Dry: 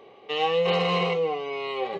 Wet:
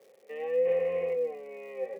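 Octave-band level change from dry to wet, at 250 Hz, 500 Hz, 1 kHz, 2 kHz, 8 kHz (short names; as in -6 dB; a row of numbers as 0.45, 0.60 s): -17.5 dB, -3.0 dB, -19.5 dB, -14.0 dB, n/a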